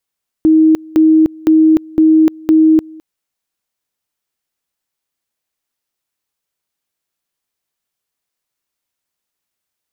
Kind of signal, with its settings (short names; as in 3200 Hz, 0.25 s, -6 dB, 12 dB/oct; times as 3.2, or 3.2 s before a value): two-level tone 316 Hz -5 dBFS, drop 25.5 dB, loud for 0.30 s, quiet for 0.21 s, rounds 5